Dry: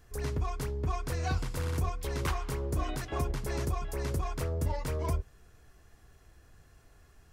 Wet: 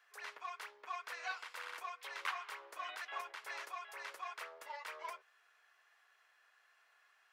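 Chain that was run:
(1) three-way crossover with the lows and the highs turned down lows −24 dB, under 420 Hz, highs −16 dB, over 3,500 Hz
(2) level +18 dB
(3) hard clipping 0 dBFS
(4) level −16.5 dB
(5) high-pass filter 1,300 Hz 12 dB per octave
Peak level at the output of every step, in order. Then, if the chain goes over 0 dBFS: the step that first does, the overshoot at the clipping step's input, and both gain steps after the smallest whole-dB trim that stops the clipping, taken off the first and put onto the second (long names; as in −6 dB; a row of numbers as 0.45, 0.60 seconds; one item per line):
−23.5, −5.5, −5.5, −22.0, −24.5 dBFS
no step passes full scale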